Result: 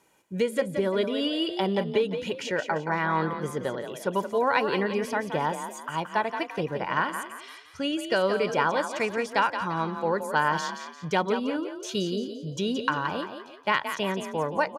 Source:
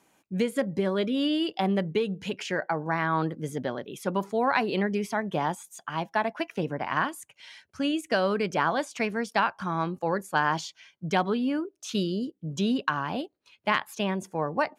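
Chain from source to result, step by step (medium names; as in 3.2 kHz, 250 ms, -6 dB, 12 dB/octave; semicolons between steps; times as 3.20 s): comb 2.1 ms, depth 39%; frequency-shifting echo 173 ms, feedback 39%, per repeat +37 Hz, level -8.5 dB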